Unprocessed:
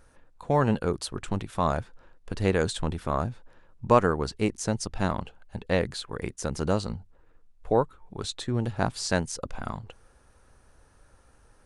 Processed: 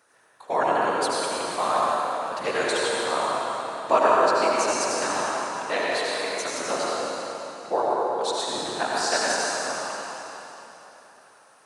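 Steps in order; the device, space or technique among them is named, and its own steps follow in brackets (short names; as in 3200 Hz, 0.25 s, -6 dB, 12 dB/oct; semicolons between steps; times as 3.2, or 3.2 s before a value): whispering ghost (whisperiser; HPF 590 Hz 12 dB/oct; reverb RT60 3.6 s, pre-delay 70 ms, DRR -5.5 dB); gain +2 dB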